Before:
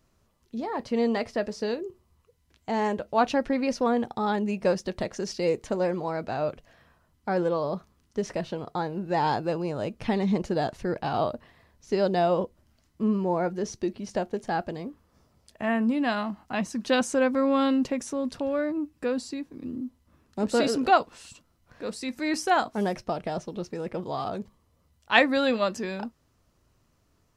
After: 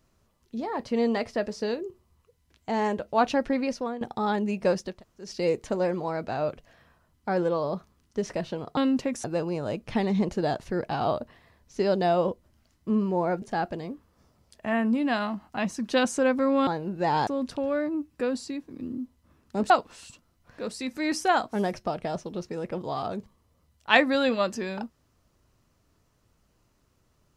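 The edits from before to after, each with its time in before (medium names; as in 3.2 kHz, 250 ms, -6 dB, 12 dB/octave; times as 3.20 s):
3.57–4.01 s: fade out, to -15 dB
4.92–5.28 s: room tone, crossfade 0.24 s
8.77–9.37 s: swap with 17.63–18.10 s
13.55–14.38 s: delete
20.53–20.92 s: delete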